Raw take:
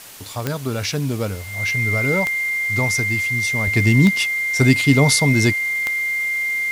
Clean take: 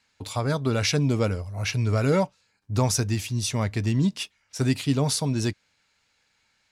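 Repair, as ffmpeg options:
ffmpeg -i in.wav -af "adeclick=threshold=4,bandreject=frequency=2100:width=30,afwtdn=0.011,asetnsamples=nb_out_samples=441:pad=0,asendcmd='3.67 volume volume -8.5dB',volume=0dB" out.wav

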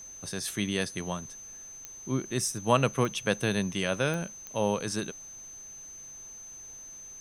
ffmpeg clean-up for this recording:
ffmpeg -i in.wav -af "adeclick=threshold=4,bandreject=frequency=6200:width=30,agate=range=-21dB:threshold=-38dB" out.wav

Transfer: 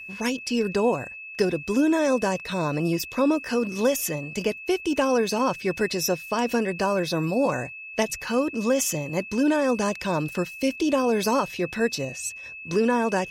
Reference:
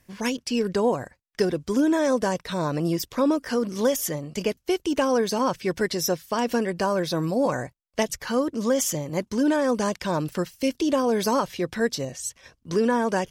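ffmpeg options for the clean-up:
ffmpeg -i in.wav -af "bandreject=frequency=2600:width=30" out.wav

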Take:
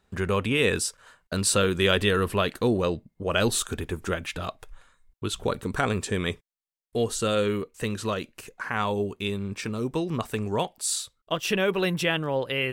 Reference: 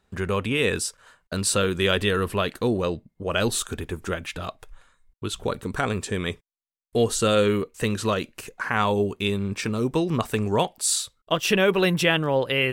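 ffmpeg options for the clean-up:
ffmpeg -i in.wav -af "asetnsamples=nb_out_samples=441:pad=0,asendcmd='6.42 volume volume 4.5dB',volume=0dB" out.wav

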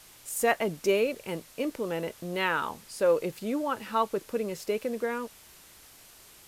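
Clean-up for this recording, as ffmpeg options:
ffmpeg -i in.wav -af "afwtdn=0.0025" out.wav

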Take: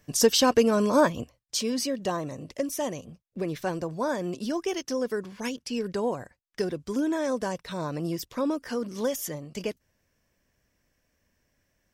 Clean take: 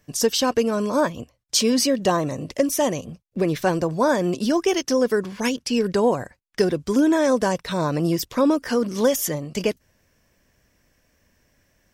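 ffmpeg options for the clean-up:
ffmpeg -i in.wav -af "asetnsamples=nb_out_samples=441:pad=0,asendcmd='1.39 volume volume 9dB',volume=0dB" out.wav

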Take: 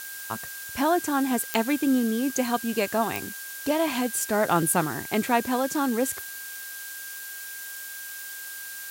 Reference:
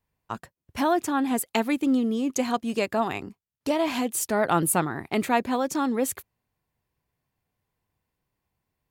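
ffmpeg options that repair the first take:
ffmpeg -i in.wav -af "adeclick=threshold=4,bandreject=frequency=1600:width=30,afftdn=noise_reduction=30:noise_floor=-38" out.wav

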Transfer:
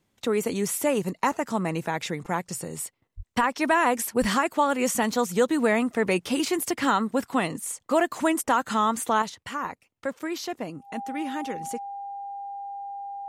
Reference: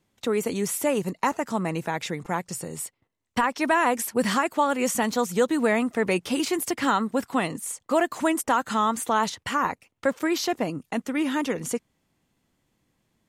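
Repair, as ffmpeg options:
ffmpeg -i in.wav -filter_complex "[0:a]bandreject=frequency=800:width=30,asplit=3[link_01][link_02][link_03];[link_01]afade=type=out:start_time=3.16:duration=0.02[link_04];[link_02]highpass=frequency=140:width=0.5412,highpass=frequency=140:width=1.3066,afade=type=in:start_time=3.16:duration=0.02,afade=type=out:start_time=3.28:duration=0.02[link_05];[link_03]afade=type=in:start_time=3.28:duration=0.02[link_06];[link_04][link_05][link_06]amix=inputs=3:normalize=0,asplit=3[link_07][link_08][link_09];[link_07]afade=type=out:start_time=4.2:duration=0.02[link_10];[link_08]highpass=frequency=140:width=0.5412,highpass=frequency=140:width=1.3066,afade=type=in:start_time=4.2:duration=0.02,afade=type=out:start_time=4.32:duration=0.02[link_11];[link_09]afade=type=in:start_time=4.32:duration=0.02[link_12];[link_10][link_11][link_12]amix=inputs=3:normalize=0,asetnsamples=nb_out_samples=441:pad=0,asendcmd='9.22 volume volume 6.5dB',volume=0dB" out.wav

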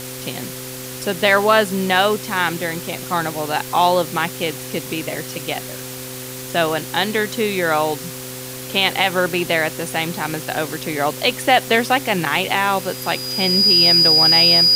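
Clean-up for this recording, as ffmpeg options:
ffmpeg -i in.wav -af "adeclick=threshold=4,bandreject=frequency=128.3:width_type=h:width=4,bandreject=frequency=256.6:width_type=h:width=4,bandreject=frequency=384.9:width_type=h:width=4,bandreject=frequency=513.2:width_type=h:width=4,bandreject=frequency=4900:width=30,afftdn=noise_reduction=30:noise_floor=-31" out.wav

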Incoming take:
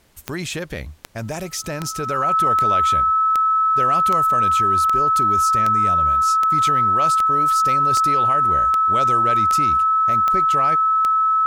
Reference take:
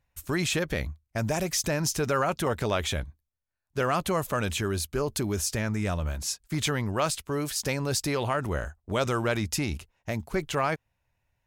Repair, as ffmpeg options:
ffmpeg -i in.wav -af "adeclick=threshold=4,bandreject=frequency=1300:width=30,agate=range=-21dB:threshold=-20dB" out.wav

